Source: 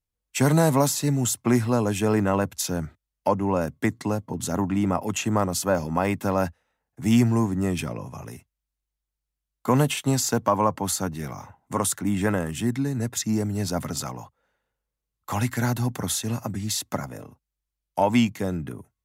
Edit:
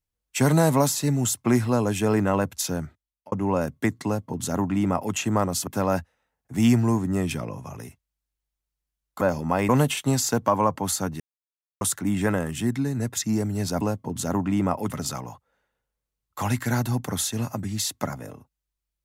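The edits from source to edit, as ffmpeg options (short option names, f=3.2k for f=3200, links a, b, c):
-filter_complex "[0:a]asplit=9[a][b][c][d][e][f][g][h][i];[a]atrim=end=3.32,asetpts=PTS-STARTPTS,afade=t=out:st=2.71:d=0.61[j];[b]atrim=start=3.32:end=5.672,asetpts=PTS-STARTPTS,afade=t=in:d=0.004:c=hsin[k];[c]atrim=start=6.148:end=9.692[l];[d]atrim=start=5.668:end=6.152[m];[e]atrim=start=9.688:end=11.2,asetpts=PTS-STARTPTS,afade=t=out:st=1.508:d=0.004:c=hsin[n];[f]atrim=start=11.2:end=11.81,asetpts=PTS-STARTPTS,volume=0[o];[g]atrim=start=11.81:end=13.812,asetpts=PTS-STARTPTS,afade=t=in:d=0.004:c=hsin[p];[h]atrim=start=4.048:end=5.142[q];[i]atrim=start=13.808[r];[j][k]concat=n=2:v=0:a=1[s];[s][l]acrossfade=d=0.004:c1=hsin:c2=hsin[t];[t][m]acrossfade=d=0.004:c1=hsin:c2=hsin[u];[n][o][p]concat=n=3:v=0:a=1[v];[u][v]acrossfade=d=0.004:c1=hsin:c2=hsin[w];[w][q]acrossfade=d=0.004:c1=hsin:c2=hsin[x];[x][r]acrossfade=d=0.004:c1=hsin:c2=hsin"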